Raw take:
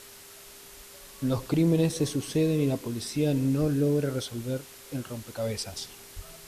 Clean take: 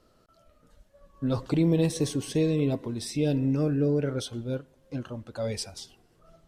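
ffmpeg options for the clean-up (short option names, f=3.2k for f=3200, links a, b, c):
-filter_complex "[0:a]bandreject=f=400:w=30,asplit=3[a][b][c];[a]afade=t=out:st=3.6:d=0.02[d];[b]highpass=f=140:w=0.5412,highpass=f=140:w=1.3066,afade=t=in:st=3.6:d=0.02,afade=t=out:st=3.72:d=0.02[e];[c]afade=t=in:st=3.72:d=0.02[f];[d][e][f]amix=inputs=3:normalize=0,asplit=3[g][h][i];[g]afade=t=out:st=6.15:d=0.02[j];[h]highpass=f=140:w=0.5412,highpass=f=140:w=1.3066,afade=t=in:st=6.15:d=0.02,afade=t=out:st=6.27:d=0.02[k];[i]afade=t=in:st=6.27:d=0.02[l];[j][k][l]amix=inputs=3:normalize=0,afwtdn=0.0045,asetnsamples=n=441:p=0,asendcmd='5.66 volume volume -4.5dB',volume=0dB"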